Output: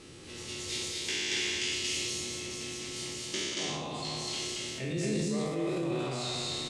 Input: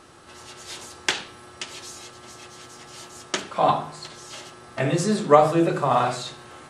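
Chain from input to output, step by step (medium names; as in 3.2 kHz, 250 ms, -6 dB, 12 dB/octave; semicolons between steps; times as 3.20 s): spectral sustain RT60 1.19 s; reverse; compression 5:1, threshold -31 dBFS, peak gain reduction 21.5 dB; reverse; low-pass 9.6 kHz 12 dB/octave; high-order bell 1 kHz -13.5 dB; on a send: loudspeakers at several distances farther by 66 m -9 dB, 79 m -1 dB; on the sum: transient shaper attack 0 dB, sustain +7 dB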